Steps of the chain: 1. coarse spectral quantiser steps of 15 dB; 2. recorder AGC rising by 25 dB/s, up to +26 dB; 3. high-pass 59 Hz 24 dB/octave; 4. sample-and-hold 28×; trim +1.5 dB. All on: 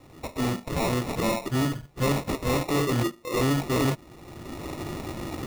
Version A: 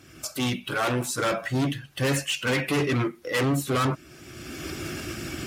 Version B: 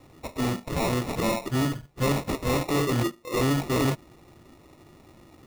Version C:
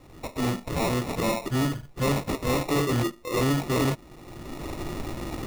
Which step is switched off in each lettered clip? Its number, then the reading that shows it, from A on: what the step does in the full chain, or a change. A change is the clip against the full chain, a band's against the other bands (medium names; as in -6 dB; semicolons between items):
4, 2 kHz band +5.5 dB; 2, momentary loudness spread change -7 LU; 3, crest factor change -3.5 dB